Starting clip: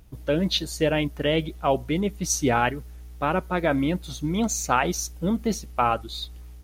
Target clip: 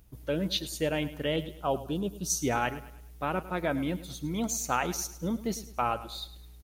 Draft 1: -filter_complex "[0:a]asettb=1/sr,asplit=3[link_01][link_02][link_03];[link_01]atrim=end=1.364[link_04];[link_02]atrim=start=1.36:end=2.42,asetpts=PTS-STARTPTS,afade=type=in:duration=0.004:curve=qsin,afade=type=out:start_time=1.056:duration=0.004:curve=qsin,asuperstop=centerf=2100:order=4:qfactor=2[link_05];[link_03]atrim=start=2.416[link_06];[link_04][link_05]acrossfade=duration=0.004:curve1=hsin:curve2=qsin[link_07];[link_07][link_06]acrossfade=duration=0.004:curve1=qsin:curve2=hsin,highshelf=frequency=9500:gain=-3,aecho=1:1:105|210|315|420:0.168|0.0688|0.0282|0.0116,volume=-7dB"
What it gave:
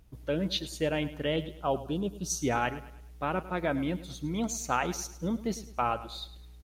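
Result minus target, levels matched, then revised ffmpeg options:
8,000 Hz band −3.0 dB
-filter_complex "[0:a]asettb=1/sr,asplit=3[link_01][link_02][link_03];[link_01]atrim=end=1.364[link_04];[link_02]atrim=start=1.36:end=2.42,asetpts=PTS-STARTPTS,afade=type=in:duration=0.004:curve=qsin,afade=type=out:start_time=1.056:duration=0.004:curve=qsin,asuperstop=centerf=2100:order=4:qfactor=2[link_05];[link_03]atrim=start=2.416[link_06];[link_04][link_05]acrossfade=duration=0.004:curve1=hsin:curve2=qsin[link_07];[link_07][link_06]acrossfade=duration=0.004:curve1=qsin:curve2=hsin,highshelf=frequency=9500:gain=9,aecho=1:1:105|210|315|420:0.168|0.0688|0.0282|0.0116,volume=-7dB"

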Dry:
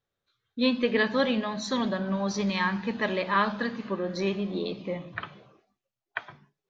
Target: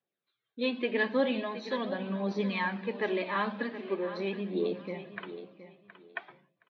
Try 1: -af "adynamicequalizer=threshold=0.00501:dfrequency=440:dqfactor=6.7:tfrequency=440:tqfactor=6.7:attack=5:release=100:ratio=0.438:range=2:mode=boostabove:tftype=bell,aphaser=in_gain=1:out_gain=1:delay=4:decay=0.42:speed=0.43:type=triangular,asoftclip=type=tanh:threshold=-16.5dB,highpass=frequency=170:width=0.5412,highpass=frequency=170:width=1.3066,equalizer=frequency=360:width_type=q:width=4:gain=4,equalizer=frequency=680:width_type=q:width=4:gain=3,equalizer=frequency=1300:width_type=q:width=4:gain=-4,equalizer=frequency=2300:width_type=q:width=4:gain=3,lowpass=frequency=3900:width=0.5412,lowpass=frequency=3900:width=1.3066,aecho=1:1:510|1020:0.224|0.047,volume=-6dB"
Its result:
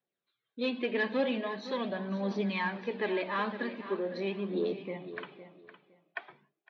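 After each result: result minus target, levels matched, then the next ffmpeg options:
soft clipping: distortion +14 dB; echo 209 ms early
-af "adynamicequalizer=threshold=0.00501:dfrequency=440:dqfactor=6.7:tfrequency=440:tqfactor=6.7:attack=5:release=100:ratio=0.438:range=2:mode=boostabove:tftype=bell,aphaser=in_gain=1:out_gain=1:delay=4:decay=0.42:speed=0.43:type=triangular,asoftclip=type=tanh:threshold=-7.5dB,highpass=frequency=170:width=0.5412,highpass=frequency=170:width=1.3066,equalizer=frequency=360:width_type=q:width=4:gain=4,equalizer=frequency=680:width_type=q:width=4:gain=3,equalizer=frequency=1300:width_type=q:width=4:gain=-4,equalizer=frequency=2300:width_type=q:width=4:gain=3,lowpass=frequency=3900:width=0.5412,lowpass=frequency=3900:width=1.3066,aecho=1:1:510|1020:0.224|0.047,volume=-6dB"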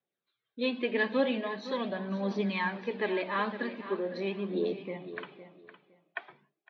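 echo 209 ms early
-af "adynamicequalizer=threshold=0.00501:dfrequency=440:dqfactor=6.7:tfrequency=440:tqfactor=6.7:attack=5:release=100:ratio=0.438:range=2:mode=boostabove:tftype=bell,aphaser=in_gain=1:out_gain=1:delay=4:decay=0.42:speed=0.43:type=triangular,asoftclip=type=tanh:threshold=-7.5dB,highpass=frequency=170:width=0.5412,highpass=frequency=170:width=1.3066,equalizer=frequency=360:width_type=q:width=4:gain=4,equalizer=frequency=680:width_type=q:width=4:gain=3,equalizer=frequency=1300:width_type=q:width=4:gain=-4,equalizer=frequency=2300:width_type=q:width=4:gain=3,lowpass=frequency=3900:width=0.5412,lowpass=frequency=3900:width=1.3066,aecho=1:1:719|1438:0.224|0.047,volume=-6dB"

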